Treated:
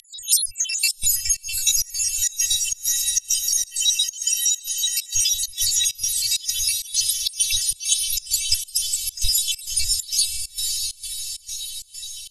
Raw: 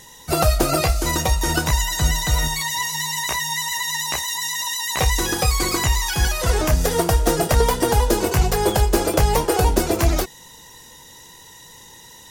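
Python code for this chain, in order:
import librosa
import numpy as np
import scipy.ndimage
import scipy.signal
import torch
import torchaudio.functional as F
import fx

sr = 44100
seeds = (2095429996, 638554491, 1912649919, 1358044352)

y = fx.spec_dropout(x, sr, seeds[0], share_pct=83)
y = fx.robotise(y, sr, hz=384.0)
y = scipy.signal.sosfilt(scipy.signal.butter(12, 12000.0, 'lowpass', fs=sr, output='sos'), y)
y = fx.tilt_shelf(y, sr, db=-9.5, hz=690.0)
y = fx.echo_diffused(y, sr, ms=640, feedback_pct=52, wet_db=-6.5)
y = fx.rider(y, sr, range_db=3, speed_s=0.5)
y = scipy.signal.sosfilt(scipy.signal.cheby1(4, 1.0, [100.0, 3000.0], 'bandstop', fs=sr, output='sos'), y)
y = fx.volume_shaper(y, sr, bpm=132, per_beat=1, depth_db=-23, release_ms=122.0, shape='slow start')
y = fx.low_shelf(y, sr, hz=63.0, db=-10.0, at=(6.01, 8.08))
y = y * 10.0 ** (9.0 / 20.0)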